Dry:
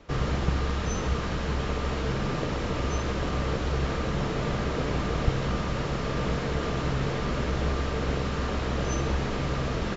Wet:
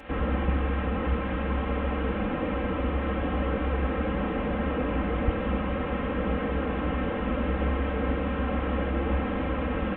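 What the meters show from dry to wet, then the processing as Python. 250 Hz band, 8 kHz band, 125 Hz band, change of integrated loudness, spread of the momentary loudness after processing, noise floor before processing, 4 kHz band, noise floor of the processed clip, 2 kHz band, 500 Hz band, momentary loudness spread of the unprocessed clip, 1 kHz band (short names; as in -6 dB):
+3.0 dB, n/a, -2.0 dB, +0.5 dB, 1 LU, -30 dBFS, -7.0 dB, -30 dBFS, 0.0 dB, +1.0 dB, 2 LU, +0.5 dB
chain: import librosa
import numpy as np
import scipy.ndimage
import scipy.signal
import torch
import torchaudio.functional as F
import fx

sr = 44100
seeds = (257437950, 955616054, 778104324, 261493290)

y = fx.delta_mod(x, sr, bps=16000, step_db=-40.0)
y = scipy.signal.sosfilt(scipy.signal.butter(2, 48.0, 'highpass', fs=sr, output='sos'), y)
y = y + 0.83 * np.pad(y, (int(3.8 * sr / 1000.0), 0))[:len(y)]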